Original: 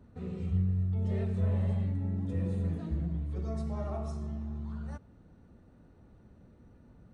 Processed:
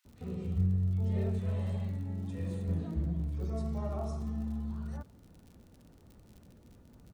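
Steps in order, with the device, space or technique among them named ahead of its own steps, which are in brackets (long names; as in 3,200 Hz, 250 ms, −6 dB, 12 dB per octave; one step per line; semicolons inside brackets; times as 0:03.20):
0:01.34–0:02.63: tilt shelving filter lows −4.5 dB, about 1,300 Hz
vinyl LP (surface crackle 54 per second −46 dBFS; pink noise bed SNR 42 dB)
0:04.17–0:04.67: comb filter 4 ms, depth 75%
multiband delay without the direct sound highs, lows 50 ms, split 1,800 Hz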